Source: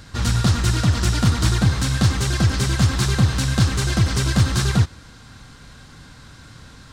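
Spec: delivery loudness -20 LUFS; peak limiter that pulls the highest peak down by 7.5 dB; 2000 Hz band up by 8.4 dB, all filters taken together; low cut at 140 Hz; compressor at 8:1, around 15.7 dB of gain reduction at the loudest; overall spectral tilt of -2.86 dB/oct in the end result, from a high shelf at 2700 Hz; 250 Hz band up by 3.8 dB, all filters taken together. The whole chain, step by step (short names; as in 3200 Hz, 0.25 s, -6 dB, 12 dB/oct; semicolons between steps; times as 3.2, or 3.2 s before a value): HPF 140 Hz; bell 250 Hz +6.5 dB; bell 2000 Hz +7.5 dB; high shelf 2700 Hz +8.5 dB; compressor 8:1, threshold -28 dBFS; gain +12.5 dB; limiter -8.5 dBFS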